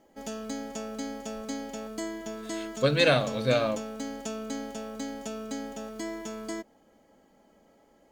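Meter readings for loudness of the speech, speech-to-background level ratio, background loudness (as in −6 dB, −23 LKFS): −25.5 LKFS, 11.5 dB, −37.0 LKFS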